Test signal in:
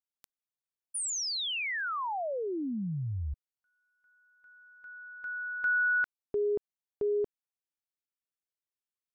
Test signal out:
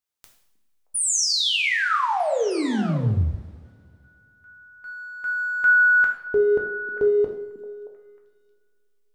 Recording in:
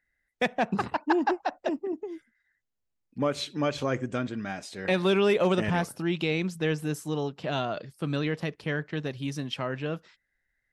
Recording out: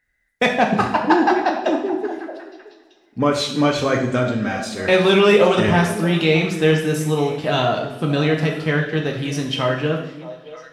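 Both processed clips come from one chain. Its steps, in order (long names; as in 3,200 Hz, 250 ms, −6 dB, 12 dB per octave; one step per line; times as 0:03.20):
in parallel at −8 dB: slack as between gear wheels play −45.5 dBFS
on the sum: echo through a band-pass that steps 312 ms, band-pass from 240 Hz, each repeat 1.4 octaves, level −9.5 dB
coupled-rooms reverb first 0.66 s, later 2.7 s, from −22 dB, DRR 0.5 dB
level +5.5 dB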